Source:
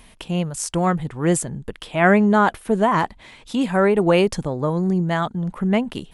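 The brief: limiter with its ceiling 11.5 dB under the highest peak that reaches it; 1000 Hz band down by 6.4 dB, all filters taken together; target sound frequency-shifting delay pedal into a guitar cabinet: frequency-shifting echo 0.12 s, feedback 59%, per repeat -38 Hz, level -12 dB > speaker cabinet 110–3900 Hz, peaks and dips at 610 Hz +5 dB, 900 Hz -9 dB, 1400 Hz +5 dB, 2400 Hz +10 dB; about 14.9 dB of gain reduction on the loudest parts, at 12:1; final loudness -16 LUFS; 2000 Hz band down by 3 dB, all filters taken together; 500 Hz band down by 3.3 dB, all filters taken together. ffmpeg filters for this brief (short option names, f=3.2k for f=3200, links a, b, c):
-filter_complex "[0:a]equalizer=f=500:t=o:g=-5,equalizer=f=1k:t=o:g=-3,equalizer=f=2k:t=o:g=-8.5,acompressor=threshold=-30dB:ratio=12,alimiter=level_in=4dB:limit=-24dB:level=0:latency=1,volume=-4dB,asplit=8[a][b][c][d][e][f][g][h];[b]adelay=120,afreqshift=-38,volume=-12dB[i];[c]adelay=240,afreqshift=-76,volume=-16.6dB[j];[d]adelay=360,afreqshift=-114,volume=-21.2dB[k];[e]adelay=480,afreqshift=-152,volume=-25.7dB[l];[f]adelay=600,afreqshift=-190,volume=-30.3dB[m];[g]adelay=720,afreqshift=-228,volume=-34.9dB[n];[h]adelay=840,afreqshift=-266,volume=-39.5dB[o];[a][i][j][k][l][m][n][o]amix=inputs=8:normalize=0,highpass=110,equalizer=f=610:t=q:w=4:g=5,equalizer=f=900:t=q:w=4:g=-9,equalizer=f=1.4k:t=q:w=4:g=5,equalizer=f=2.4k:t=q:w=4:g=10,lowpass=f=3.9k:w=0.5412,lowpass=f=3.9k:w=1.3066,volume=21dB"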